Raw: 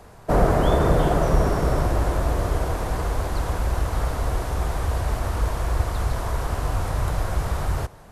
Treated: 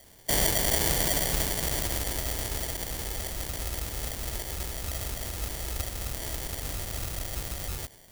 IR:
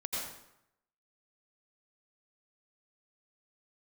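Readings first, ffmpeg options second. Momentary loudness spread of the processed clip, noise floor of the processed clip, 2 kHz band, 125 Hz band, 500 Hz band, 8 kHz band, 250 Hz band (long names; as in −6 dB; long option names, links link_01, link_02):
10 LU, −53 dBFS, −3.0 dB, −12.5 dB, −12.0 dB, +8.5 dB, −11.5 dB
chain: -af "acrusher=samples=34:mix=1:aa=0.000001,crystalizer=i=6.5:c=0,volume=-12.5dB"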